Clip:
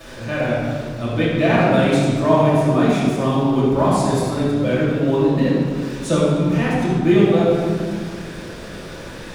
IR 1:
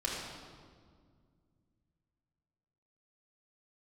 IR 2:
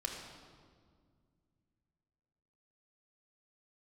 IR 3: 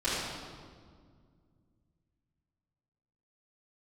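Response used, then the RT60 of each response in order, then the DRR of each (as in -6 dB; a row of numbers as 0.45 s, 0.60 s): 3; 1.9 s, 2.0 s, 1.9 s; -5.0 dB, 0.0 dB, -13.0 dB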